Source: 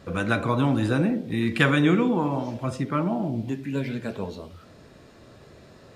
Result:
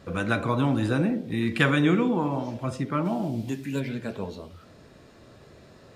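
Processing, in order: 3.04–3.79 s: treble shelf 2.8 kHz -> 4.5 kHz +11 dB; trim -1.5 dB

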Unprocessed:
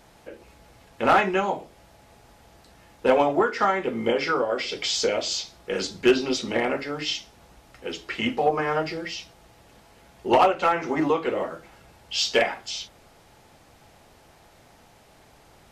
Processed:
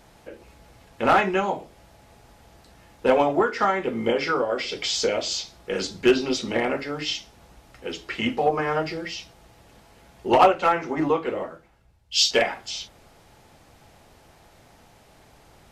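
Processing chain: bass shelf 170 Hz +3 dB; 10.38–12.31 s: three bands expanded up and down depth 70%

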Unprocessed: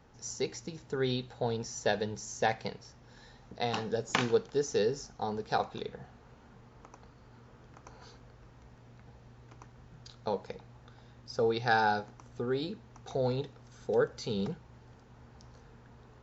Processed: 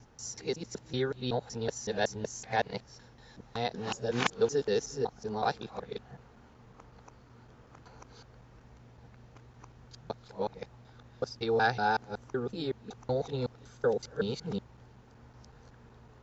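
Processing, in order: time reversed locally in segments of 187 ms

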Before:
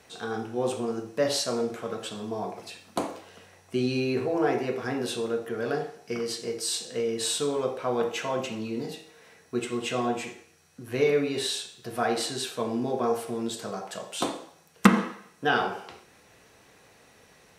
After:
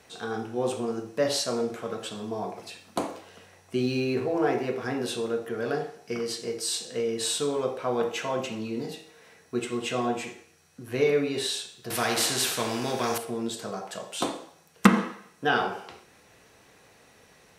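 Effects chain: 3.79–4.81 s: hysteresis with a dead band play -49 dBFS; 11.90–13.18 s: spectrum-flattening compressor 2:1

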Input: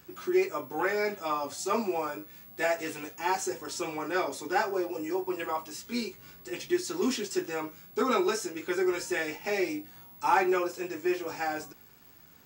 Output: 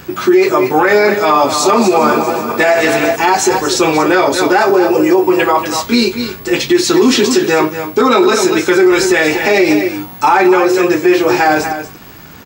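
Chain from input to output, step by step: 1.16–3.16 s: backward echo that repeats 195 ms, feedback 69%, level -11 dB; treble shelf 5.6 kHz -8 dB; delay 236 ms -11.5 dB; dynamic bell 4 kHz, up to +6 dB, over -59 dBFS, Q 4.2; loudness maximiser +25 dB; trim -1 dB

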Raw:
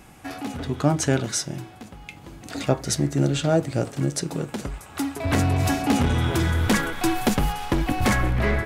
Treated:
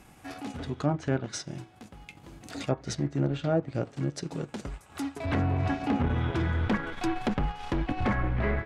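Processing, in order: low-pass that closes with the level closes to 1.8 kHz, closed at -16 dBFS; transient shaper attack -3 dB, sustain -7 dB; trim -5 dB

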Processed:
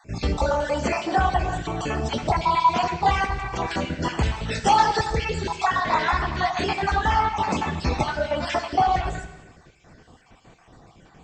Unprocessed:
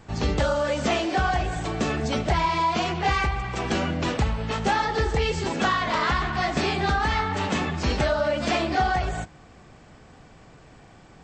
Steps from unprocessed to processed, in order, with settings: random holes in the spectrogram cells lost 38%; 4.23–5.10 s: treble shelf 3 kHz +10.5 dB; gated-style reverb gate 440 ms falling, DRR 8.5 dB; dynamic bell 890 Hz, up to +7 dB, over -39 dBFS, Q 2.2

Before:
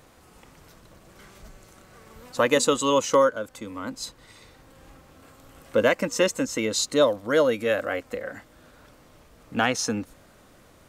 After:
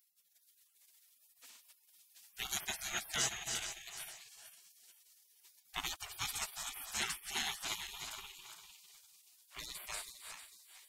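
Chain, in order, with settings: backward echo that repeats 225 ms, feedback 57%, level -7 dB; spectral gate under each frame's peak -30 dB weak; trim +2.5 dB

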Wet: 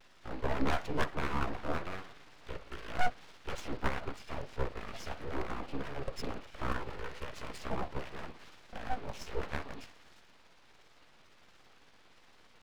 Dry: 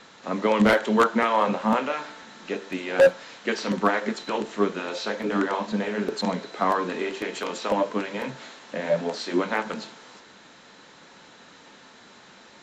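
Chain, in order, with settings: rotating-head pitch shifter -7.5 st; vibrato 1.4 Hz 74 cents; full-wave rectifier; trim -8 dB

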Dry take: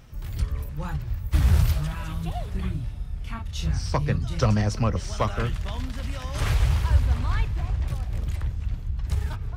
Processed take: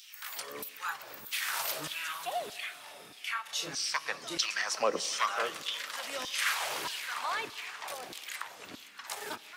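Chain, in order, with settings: high-pass 170 Hz 12 dB/octave; tilt EQ +2 dB/octave; in parallel at +2 dB: compression, threshold -42 dBFS, peak gain reduction 19.5 dB; on the sum: LFO high-pass saw down 1.6 Hz 270–3900 Hz; Schroeder reverb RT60 3.7 s, combs from 28 ms, DRR 16.5 dB; trim -4 dB

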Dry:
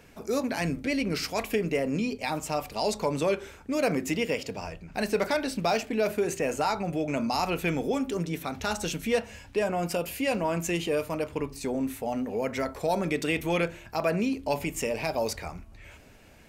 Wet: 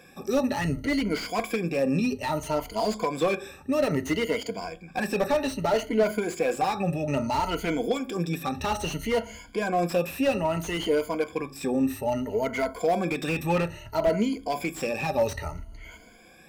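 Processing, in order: drifting ripple filter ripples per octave 1.8, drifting +0.61 Hz, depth 21 dB; slew-rate limiter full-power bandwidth 100 Hz; trim -1.5 dB

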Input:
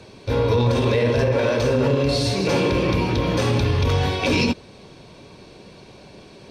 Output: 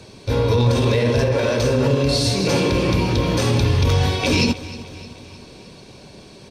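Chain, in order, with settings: tone controls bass +3 dB, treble +7 dB; feedback delay 307 ms, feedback 56%, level -17 dB

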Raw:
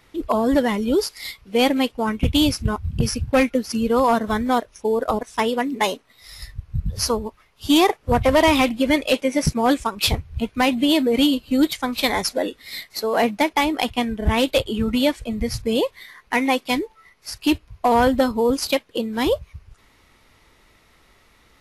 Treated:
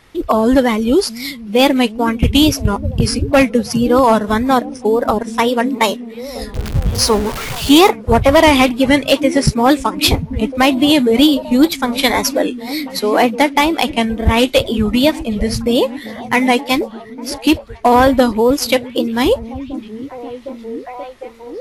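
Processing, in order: 6.54–7.89 s: jump at every zero crossing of -25.5 dBFS; repeats whose band climbs or falls 755 ms, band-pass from 160 Hz, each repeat 0.7 oct, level -9 dB; wow and flutter 93 cents; trim +6.5 dB

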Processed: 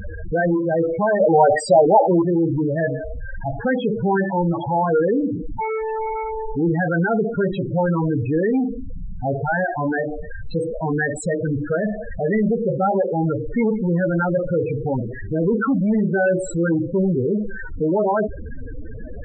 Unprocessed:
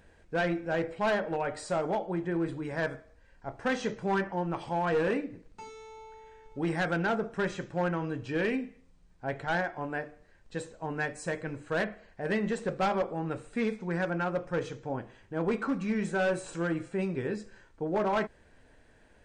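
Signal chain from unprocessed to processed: power-law waveshaper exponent 0.35; loudest bins only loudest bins 8; 1.20–2.22 s: peaking EQ 1.2 kHz +11 dB 2.7 oct; trim +8 dB

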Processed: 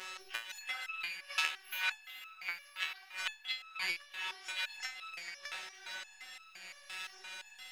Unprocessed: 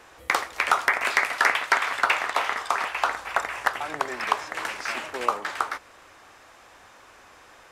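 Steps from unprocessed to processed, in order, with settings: sawtooth pitch modulation +10 st, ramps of 594 ms; frequency weighting D; spectral selection erased 1.51–1.77 s, 230–11000 Hz; dynamic bell 6.5 kHz, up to -4 dB, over -33 dBFS, Q 1.5; slow attack 259 ms; robot voice 187 Hz; inverted gate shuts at -13 dBFS, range -26 dB; echo that smears into a reverb 451 ms, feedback 60%, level -9 dB; on a send at -18 dB: reverberation RT60 0.35 s, pre-delay 4 ms; on the sum: resonator arpeggio 5.8 Hz 77–1300 Hz; trim +11.5 dB

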